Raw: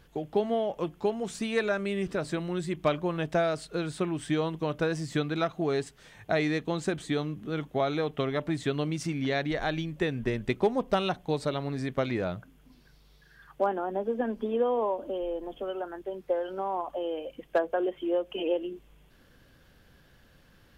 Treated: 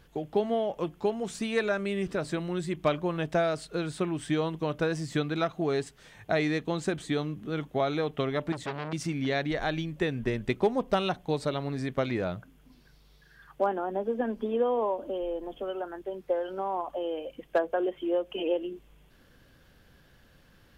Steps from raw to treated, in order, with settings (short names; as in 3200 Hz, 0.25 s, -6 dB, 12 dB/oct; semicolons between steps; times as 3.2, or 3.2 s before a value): 8.52–8.93 core saturation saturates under 1900 Hz